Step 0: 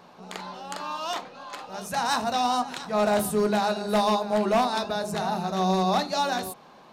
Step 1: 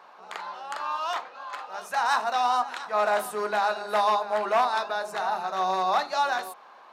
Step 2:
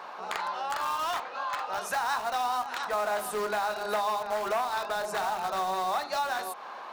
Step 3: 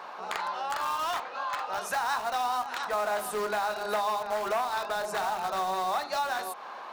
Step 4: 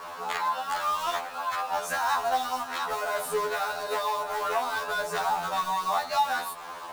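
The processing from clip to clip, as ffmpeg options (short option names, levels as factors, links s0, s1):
-af "highpass=400,equalizer=f=1300:t=o:w=2.2:g=12,volume=0.422"
-filter_complex "[0:a]asplit=2[s0][s1];[s1]aeval=exprs='(mod(23.7*val(0)+1,2)-1)/23.7':c=same,volume=0.316[s2];[s0][s2]amix=inputs=2:normalize=0,acompressor=threshold=0.0141:ratio=3,volume=2.11"
-af anull
-filter_complex "[0:a]asplit=2[s0][s1];[s1]acrusher=bits=6:mix=0:aa=0.000001,volume=0.668[s2];[s0][s2]amix=inputs=2:normalize=0,afftfilt=real='re*2*eq(mod(b,4),0)':imag='im*2*eq(mod(b,4),0)':win_size=2048:overlap=0.75"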